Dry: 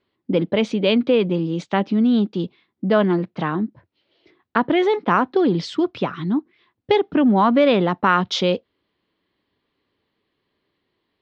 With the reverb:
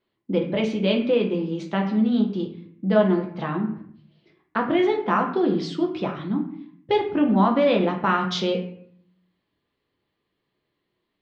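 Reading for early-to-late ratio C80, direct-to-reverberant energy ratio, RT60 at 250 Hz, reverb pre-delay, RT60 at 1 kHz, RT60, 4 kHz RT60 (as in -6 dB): 11.5 dB, 1.0 dB, 0.85 s, 6 ms, 0.60 s, 0.60 s, 0.40 s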